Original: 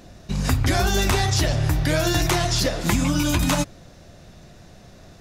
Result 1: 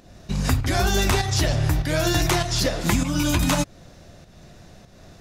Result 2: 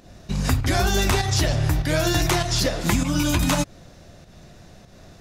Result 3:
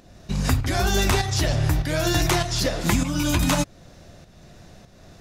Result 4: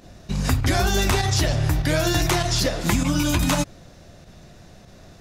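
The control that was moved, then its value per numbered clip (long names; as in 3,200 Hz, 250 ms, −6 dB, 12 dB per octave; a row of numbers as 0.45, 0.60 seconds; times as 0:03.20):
fake sidechain pumping, release: 290, 174, 460, 62 milliseconds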